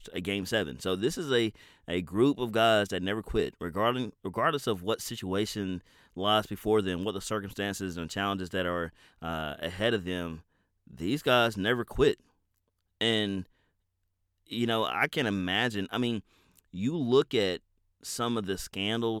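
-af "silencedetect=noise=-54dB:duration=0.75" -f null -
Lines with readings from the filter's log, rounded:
silence_start: 13.45
silence_end: 14.47 | silence_duration: 1.01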